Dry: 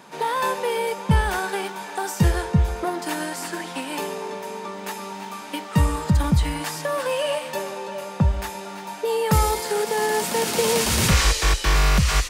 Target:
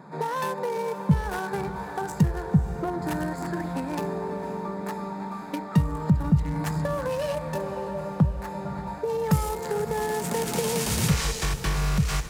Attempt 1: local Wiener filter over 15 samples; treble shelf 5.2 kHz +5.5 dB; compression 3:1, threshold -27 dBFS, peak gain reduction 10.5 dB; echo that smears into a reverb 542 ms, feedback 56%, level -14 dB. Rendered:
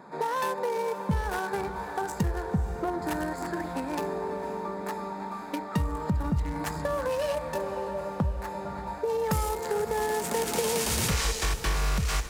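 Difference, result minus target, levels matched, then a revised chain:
125 Hz band -4.5 dB
local Wiener filter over 15 samples; treble shelf 5.2 kHz +5.5 dB; compression 3:1, threshold -27 dBFS, peak gain reduction 10.5 dB; peaking EQ 150 Hz +11.5 dB 0.79 oct; echo that smears into a reverb 542 ms, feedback 56%, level -14 dB

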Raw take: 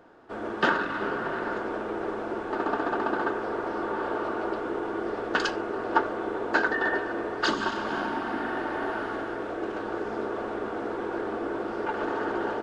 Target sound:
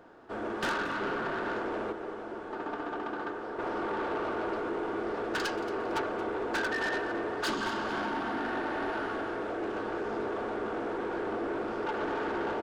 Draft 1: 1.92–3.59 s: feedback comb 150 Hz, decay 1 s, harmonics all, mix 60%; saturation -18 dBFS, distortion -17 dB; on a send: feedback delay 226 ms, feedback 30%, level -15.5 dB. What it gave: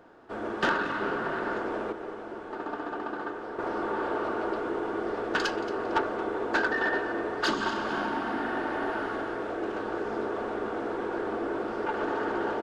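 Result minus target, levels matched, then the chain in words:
saturation: distortion -8 dB
1.92–3.59 s: feedback comb 150 Hz, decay 1 s, harmonics all, mix 60%; saturation -27.5 dBFS, distortion -9 dB; on a send: feedback delay 226 ms, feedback 30%, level -15.5 dB

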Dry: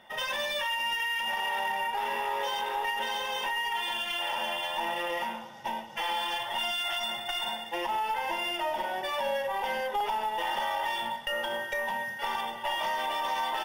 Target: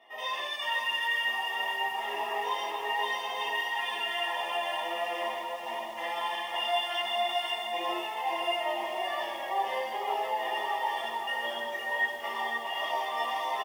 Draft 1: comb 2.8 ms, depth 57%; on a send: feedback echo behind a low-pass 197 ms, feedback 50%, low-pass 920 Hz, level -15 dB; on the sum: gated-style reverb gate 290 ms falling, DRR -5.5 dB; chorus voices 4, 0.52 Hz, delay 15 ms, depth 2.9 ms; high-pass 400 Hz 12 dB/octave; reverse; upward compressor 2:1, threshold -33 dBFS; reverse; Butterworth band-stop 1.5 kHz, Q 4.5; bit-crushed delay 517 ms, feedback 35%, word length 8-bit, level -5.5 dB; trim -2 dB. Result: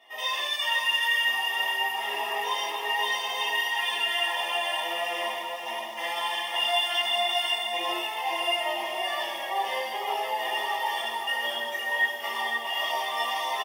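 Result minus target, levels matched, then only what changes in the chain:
4 kHz band +2.5 dB
add after high-pass: treble shelf 2.5 kHz -11.5 dB

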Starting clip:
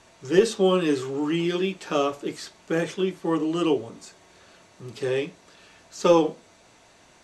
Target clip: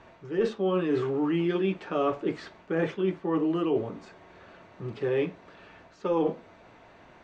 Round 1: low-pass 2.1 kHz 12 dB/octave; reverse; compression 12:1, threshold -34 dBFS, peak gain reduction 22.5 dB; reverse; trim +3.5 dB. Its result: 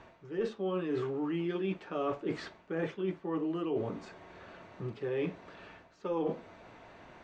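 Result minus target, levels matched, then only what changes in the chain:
compression: peak gain reduction +7.5 dB
change: compression 12:1, threshold -26 dBFS, peak gain reduction 15.5 dB

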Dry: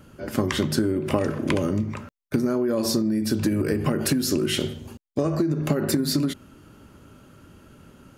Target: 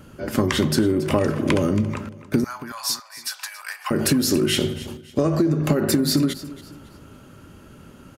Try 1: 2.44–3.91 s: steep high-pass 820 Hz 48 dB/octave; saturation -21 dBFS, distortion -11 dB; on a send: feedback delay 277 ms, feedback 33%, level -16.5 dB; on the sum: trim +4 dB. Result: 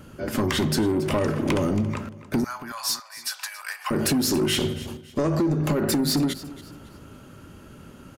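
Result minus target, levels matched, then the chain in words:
saturation: distortion +14 dB
2.44–3.91 s: steep high-pass 820 Hz 48 dB/octave; saturation -9.5 dBFS, distortion -24 dB; on a send: feedback delay 277 ms, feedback 33%, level -16.5 dB; on the sum: trim +4 dB

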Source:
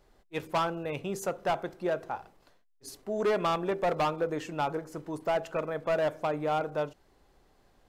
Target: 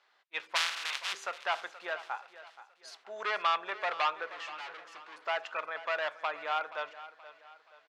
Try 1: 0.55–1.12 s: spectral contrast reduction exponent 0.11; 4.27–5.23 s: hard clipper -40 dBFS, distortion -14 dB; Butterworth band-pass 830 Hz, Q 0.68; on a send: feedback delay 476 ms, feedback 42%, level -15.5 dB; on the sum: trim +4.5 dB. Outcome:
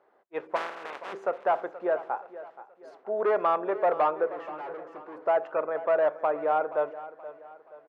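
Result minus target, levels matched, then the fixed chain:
2 kHz band -10.0 dB
0.55–1.12 s: spectral contrast reduction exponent 0.11; 4.27–5.23 s: hard clipper -40 dBFS, distortion -14 dB; Butterworth band-pass 2.2 kHz, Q 0.68; on a send: feedback delay 476 ms, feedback 42%, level -15.5 dB; on the sum: trim +4.5 dB

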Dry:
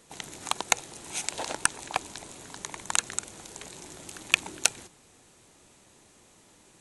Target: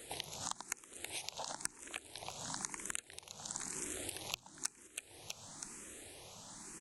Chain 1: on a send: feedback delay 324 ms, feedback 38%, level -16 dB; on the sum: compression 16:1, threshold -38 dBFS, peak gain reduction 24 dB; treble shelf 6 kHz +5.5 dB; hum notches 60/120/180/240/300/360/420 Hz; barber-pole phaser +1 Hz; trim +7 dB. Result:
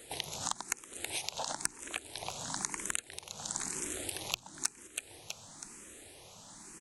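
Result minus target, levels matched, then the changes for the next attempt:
compression: peak gain reduction -6 dB
change: compression 16:1, threshold -44.5 dBFS, peak gain reduction 30.5 dB

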